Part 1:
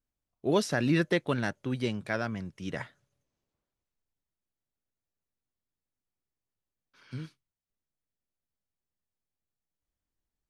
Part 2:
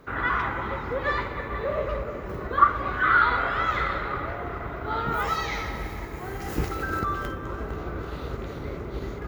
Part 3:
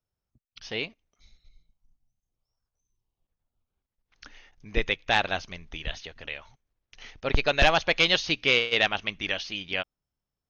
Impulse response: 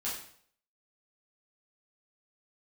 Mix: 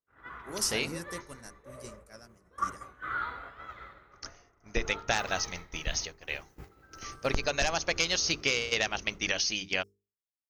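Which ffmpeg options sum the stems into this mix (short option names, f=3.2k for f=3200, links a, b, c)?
-filter_complex "[0:a]volume=-12.5dB[a];[1:a]volume=-14dB,asplit=2[b][c];[c]volume=-12dB[d];[2:a]lowpass=5.4k,volume=2dB[e];[a][e]amix=inputs=2:normalize=0,aexciter=amount=13.6:drive=5.8:freq=5.3k,acompressor=threshold=-24dB:ratio=12,volume=0dB[f];[d]aecho=0:1:188:1[g];[b][f][g]amix=inputs=3:normalize=0,agate=range=-33dB:threshold=-32dB:ratio=3:detection=peak,bandreject=f=50:t=h:w=6,bandreject=f=100:t=h:w=6,bandreject=f=150:t=h:w=6,bandreject=f=200:t=h:w=6,bandreject=f=250:t=h:w=6,bandreject=f=300:t=h:w=6,bandreject=f=350:t=h:w=6,bandreject=f=400:t=h:w=6,bandreject=f=450:t=h:w=6"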